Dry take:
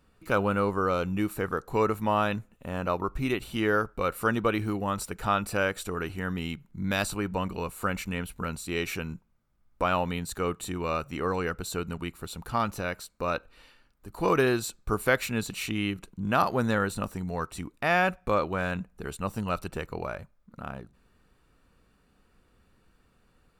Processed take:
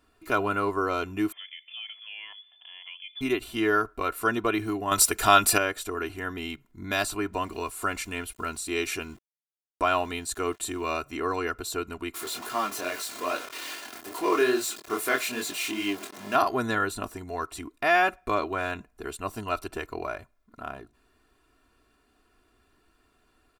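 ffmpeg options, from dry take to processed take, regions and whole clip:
ffmpeg -i in.wav -filter_complex "[0:a]asettb=1/sr,asplit=3[link_01][link_02][link_03];[link_01]atrim=end=1.324[link_04];[link_02]atrim=start=1.32:end=3.21,asetpts=PTS-STARTPTS,afade=type=in:duration=0.004:curve=qsin,afade=type=out:start_time=1.886:duration=0.004:curve=qsin,acompressor=threshold=-48dB:ratio=2.5:attack=3.2:release=140:knee=1:detection=peak,lowpass=frequency=3000:width_type=q:width=0.5098,lowpass=frequency=3000:width_type=q:width=0.6013,lowpass=frequency=3000:width_type=q:width=0.9,lowpass=frequency=3000:width_type=q:width=2.563,afreqshift=-3500[link_05];[link_03]atrim=start=3.206[link_06];[link_04][link_05]acrossfade=duration=0.004:curve1=hsin:curve2=qsin[link_07];[link_07][link_06]acrossfade=duration=0.004:curve1=qsin:curve2=hsin,asettb=1/sr,asplit=3[link_08][link_09][link_10];[link_08]atrim=end=4.914[link_11];[link_09]atrim=start=4.91:end=5.58,asetpts=PTS-STARTPTS,afade=type=in:duration=0.004:curve=qsin,afade=type=out:start_time=0.666:duration=0.004:curve=qsin,highshelf=frequency=2700:gain=11,acontrast=42[link_12];[link_10]atrim=start=5.576[link_13];[link_11][link_12]acrossfade=duration=0.004:curve1=hsin:curve2=qsin[link_14];[link_14][link_13]acrossfade=duration=0.004:curve1=qsin:curve2=hsin,asettb=1/sr,asplit=3[link_15][link_16][link_17];[link_15]atrim=end=7.334[link_18];[link_16]atrim=start=7.33:end=11,asetpts=PTS-STARTPTS,afade=type=in:duration=0.004:curve=qsin,afade=type=out:start_time=3.666:duration=0.004:curve=qsin,lowpass=frequency=11000:width=0.5412,lowpass=frequency=11000:width=1.3066,highshelf=frequency=7400:gain=8,aeval=exprs='val(0)*gte(abs(val(0)),0.00282)':channel_layout=same[link_19];[link_17]atrim=start=10.996[link_20];[link_18][link_19]acrossfade=duration=0.004:curve1=hsin:curve2=qsin[link_21];[link_21][link_20]acrossfade=duration=0.004:curve1=qsin:curve2=hsin,asettb=1/sr,asplit=3[link_22][link_23][link_24];[link_22]atrim=end=12.144[link_25];[link_23]atrim=start=12.14:end=16.35,asetpts=PTS-STARTPTS,afade=type=in:duration=0.004:curve=qsin,afade=type=out:start_time=4.206:duration=0.004:curve=qsin,aeval=exprs='val(0)+0.5*0.0335*sgn(val(0))':channel_layout=same,highpass=230,flanger=delay=20:depth=5.1:speed=2.4[link_26];[link_24]atrim=start=16.346[link_27];[link_25][link_26]acrossfade=duration=0.004:curve1=hsin:curve2=qsin[link_28];[link_28][link_27]acrossfade=duration=0.004:curve1=qsin:curve2=hsin,lowshelf=frequency=140:gain=-9.5,aecho=1:1:2.9:0.79" out.wav

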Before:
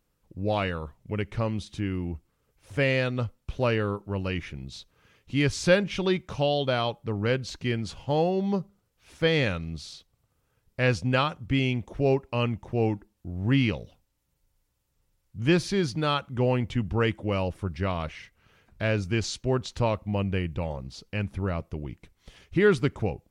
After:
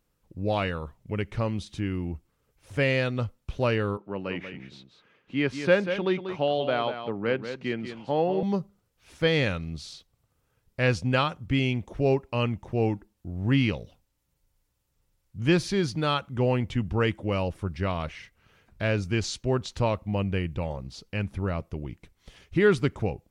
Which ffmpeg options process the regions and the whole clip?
ffmpeg -i in.wav -filter_complex "[0:a]asettb=1/sr,asplit=3[link_01][link_02][link_03];[link_01]atrim=end=3.974[link_04];[link_02]atrim=start=3.97:end=8.43,asetpts=PTS-STARTPTS,afade=type=in:duration=0.004:curve=qsin,afade=type=out:start_time=4.456:duration=0.004:curve=qsin,acrossover=split=160 3300:gain=0.0891 1 0.158[link_05][link_06][link_07];[link_05][link_06][link_07]amix=inputs=3:normalize=0,aecho=1:1:189:0.355,atrim=end_sample=196686[link_08];[link_03]atrim=start=8.426[link_09];[link_04][link_08]acrossfade=duration=0.004:curve1=hsin:curve2=qsin[link_10];[link_10][link_09]acrossfade=duration=0.004:curve1=qsin:curve2=hsin" out.wav

